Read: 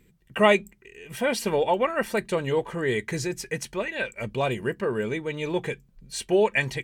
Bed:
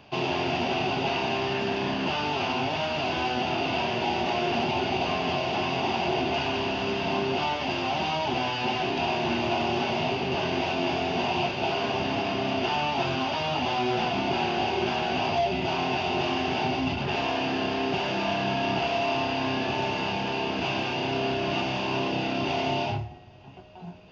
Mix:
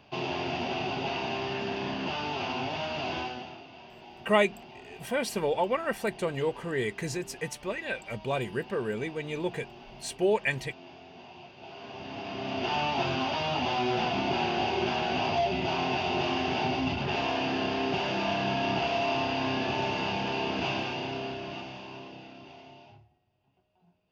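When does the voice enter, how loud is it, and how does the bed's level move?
3.90 s, -4.5 dB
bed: 3.18 s -5 dB
3.67 s -22 dB
11.47 s -22 dB
12.77 s -2 dB
20.68 s -2 dB
22.82 s -25 dB

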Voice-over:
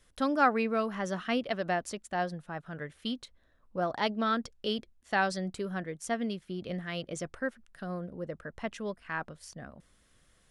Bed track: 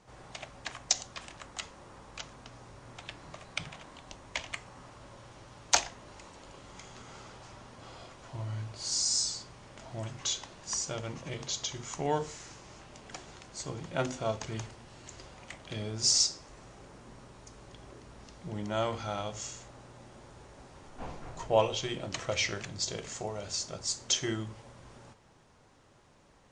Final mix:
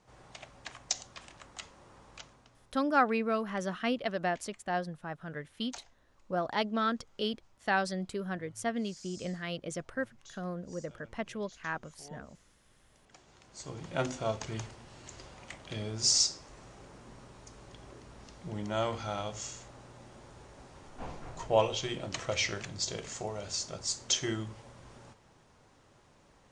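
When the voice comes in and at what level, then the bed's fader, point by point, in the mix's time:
2.55 s, -1.0 dB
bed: 2.15 s -5 dB
2.94 s -22 dB
12.68 s -22 dB
13.9 s -0.5 dB

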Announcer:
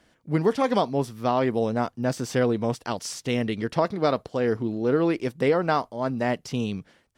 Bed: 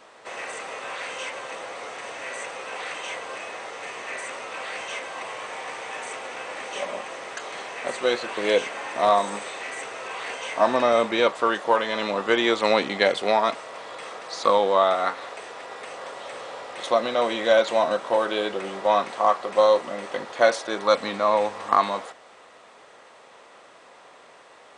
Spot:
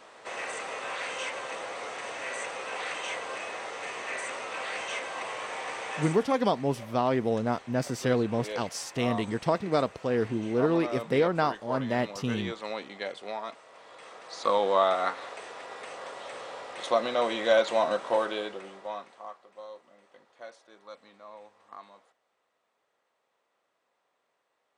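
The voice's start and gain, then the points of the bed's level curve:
5.70 s, -3.0 dB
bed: 6.02 s -1.5 dB
6.38 s -15.5 dB
13.6 s -15.5 dB
14.71 s -4 dB
18.18 s -4 dB
19.51 s -27 dB

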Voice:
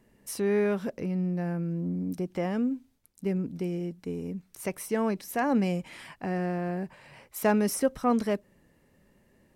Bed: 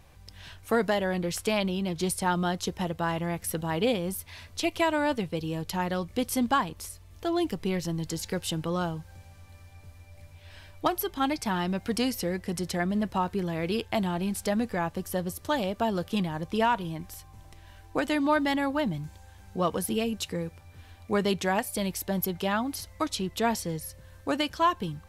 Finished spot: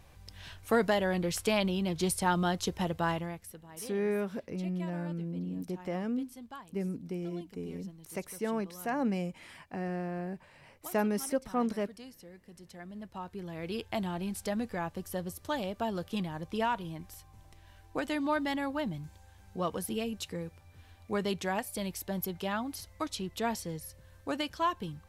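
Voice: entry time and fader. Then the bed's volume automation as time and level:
3.50 s, -5.5 dB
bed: 3.11 s -1.5 dB
3.65 s -21.5 dB
12.55 s -21.5 dB
13.87 s -6 dB

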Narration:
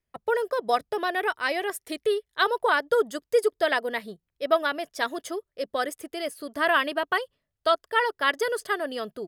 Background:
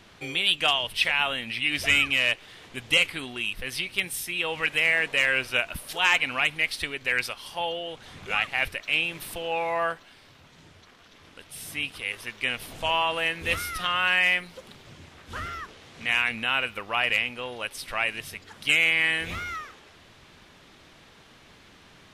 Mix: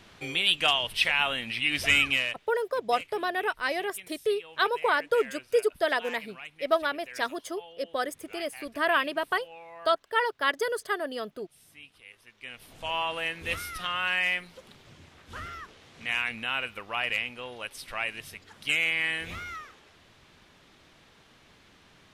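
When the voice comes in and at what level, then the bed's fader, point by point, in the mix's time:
2.20 s, -2.5 dB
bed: 2.14 s -1 dB
2.5 s -19 dB
12.25 s -19 dB
12.99 s -5 dB

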